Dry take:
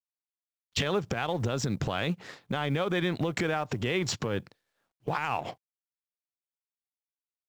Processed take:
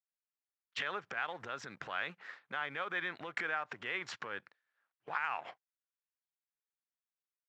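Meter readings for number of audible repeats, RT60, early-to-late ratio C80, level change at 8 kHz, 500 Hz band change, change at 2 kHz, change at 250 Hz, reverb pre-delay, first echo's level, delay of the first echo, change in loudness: none, none, none, -18.0 dB, -15.0 dB, -2.0 dB, -21.0 dB, none, none, none, -8.5 dB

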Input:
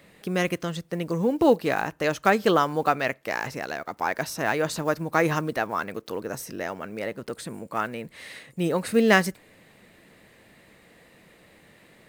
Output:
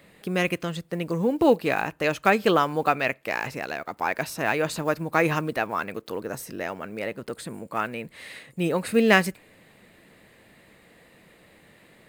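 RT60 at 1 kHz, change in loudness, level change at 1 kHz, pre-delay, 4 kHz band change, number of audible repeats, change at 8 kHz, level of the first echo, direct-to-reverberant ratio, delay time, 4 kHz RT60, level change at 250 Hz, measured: none, +0.5 dB, 0.0 dB, none, +1.0 dB, none, -1.5 dB, none, none, none, none, 0.0 dB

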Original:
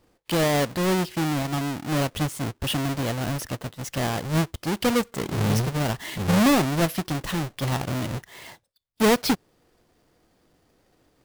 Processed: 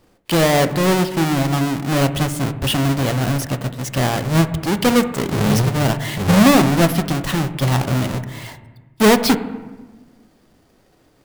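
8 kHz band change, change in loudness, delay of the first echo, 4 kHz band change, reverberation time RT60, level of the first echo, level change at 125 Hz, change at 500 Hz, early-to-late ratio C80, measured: +6.5 dB, +7.5 dB, none, +6.5 dB, 1.2 s, none, +8.0 dB, +7.0 dB, 14.0 dB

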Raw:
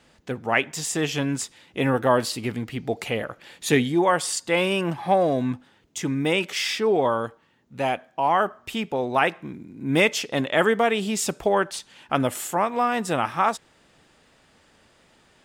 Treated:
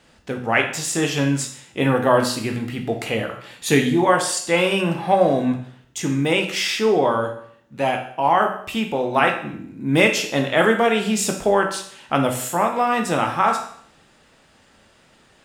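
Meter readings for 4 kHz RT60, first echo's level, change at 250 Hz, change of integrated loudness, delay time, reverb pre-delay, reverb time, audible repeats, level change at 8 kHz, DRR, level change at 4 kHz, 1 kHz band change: 0.60 s, none, +4.0 dB, +3.5 dB, none, 16 ms, 0.60 s, none, +3.5 dB, 3.0 dB, +3.5 dB, +3.5 dB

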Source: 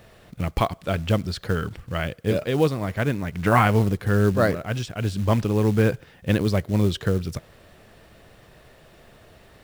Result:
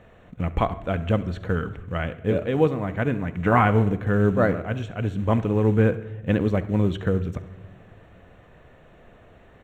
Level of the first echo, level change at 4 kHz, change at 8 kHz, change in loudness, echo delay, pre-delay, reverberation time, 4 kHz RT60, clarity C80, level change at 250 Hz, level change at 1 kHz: -19.0 dB, -8.0 dB, under -15 dB, 0.0 dB, 68 ms, 4 ms, 1.2 s, 0.65 s, 17.5 dB, +0.5 dB, 0.0 dB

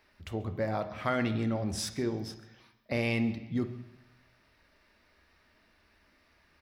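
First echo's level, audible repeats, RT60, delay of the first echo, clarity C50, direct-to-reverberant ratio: -21.5 dB, 1, 1.0 s, 0.136 s, 11.5 dB, 8.5 dB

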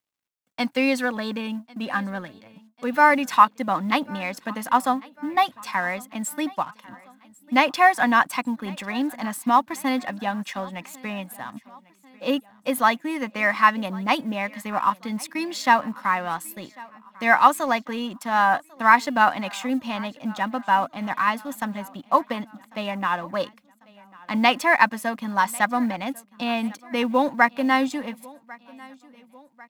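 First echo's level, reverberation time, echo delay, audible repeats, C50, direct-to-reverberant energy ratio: -23.5 dB, none, 1.096 s, 3, none, none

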